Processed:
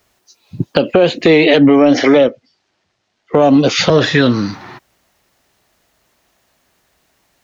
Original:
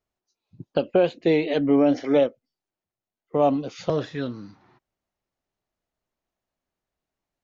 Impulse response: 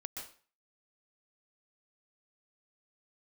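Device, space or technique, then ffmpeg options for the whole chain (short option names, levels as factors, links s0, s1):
mastering chain: -filter_complex "[0:a]asettb=1/sr,asplit=3[s0][s1][s2];[s0]atrim=end=2.144[s3];[s1]atrim=start=2.14:end=3.37,asetpts=PTS-STARTPTS,afade=t=in:d=0.004:c=qsin,afade=t=out:st=1.226:d=0.004:c=qsin,lowpass=f=5800:w=0.5412,lowpass=f=5800:w=1.3066[s4];[s2]atrim=start=3.366[s5];[s3][s4]acrossfade=d=0.004:c1=hsin:c2=qsin[s6];[s6][s5]acrossfade=d=0.004:c1=qsin:c2=hsin,highpass=41,equalizer=f=1800:t=o:w=0.22:g=2.5,acrossover=split=500|5200[s7][s8][s9];[s7]acompressor=threshold=0.0794:ratio=4[s10];[s8]acompressor=threshold=0.0398:ratio=4[s11];[s9]acompressor=threshold=0.00112:ratio=4[s12];[s10][s11][s12]amix=inputs=3:normalize=0,acompressor=threshold=0.0355:ratio=2,asoftclip=type=tanh:threshold=0.141,tiltshelf=f=1100:g=-3.5,asoftclip=type=hard:threshold=0.0794,alimiter=level_in=21.1:limit=0.891:release=50:level=0:latency=1,volume=0.891"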